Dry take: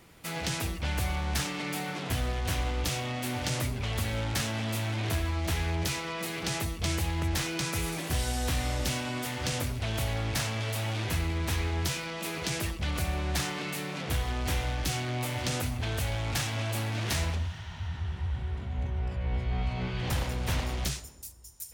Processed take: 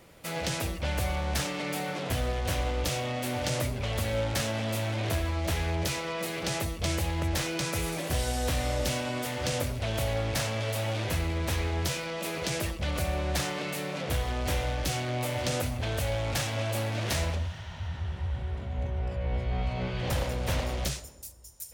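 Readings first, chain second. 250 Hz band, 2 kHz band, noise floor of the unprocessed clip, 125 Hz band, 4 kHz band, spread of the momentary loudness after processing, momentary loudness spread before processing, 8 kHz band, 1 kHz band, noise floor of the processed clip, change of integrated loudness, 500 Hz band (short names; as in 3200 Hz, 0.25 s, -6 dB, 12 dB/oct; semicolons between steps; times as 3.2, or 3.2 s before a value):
+0.5 dB, 0.0 dB, -42 dBFS, 0.0 dB, 0.0 dB, 4 LU, 4 LU, 0.0 dB, +1.5 dB, -41 dBFS, +0.5 dB, +5.5 dB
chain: bell 560 Hz +9 dB 0.46 oct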